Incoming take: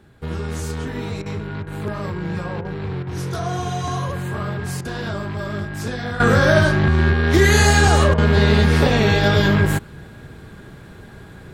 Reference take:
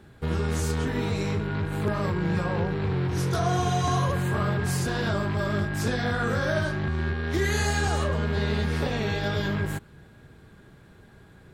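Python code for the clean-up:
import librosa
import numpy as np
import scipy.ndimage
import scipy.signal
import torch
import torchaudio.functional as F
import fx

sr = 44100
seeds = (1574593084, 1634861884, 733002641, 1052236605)

y = fx.fix_interpolate(x, sr, at_s=(1.22, 1.63, 2.61, 3.03, 4.81, 8.14), length_ms=38.0)
y = fx.gain(y, sr, db=fx.steps((0.0, 0.0), (6.2, -11.5)))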